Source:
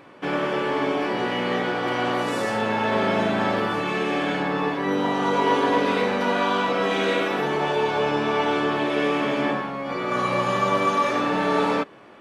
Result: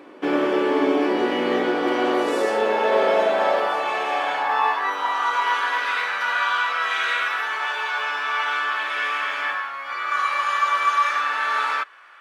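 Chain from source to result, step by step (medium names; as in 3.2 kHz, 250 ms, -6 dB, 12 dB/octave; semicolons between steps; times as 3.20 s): short-mantissa float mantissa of 6-bit; high-pass sweep 310 Hz -> 1.4 kHz, 1.87–5.65 s; 4.47–4.90 s: doubling 23 ms -3.5 dB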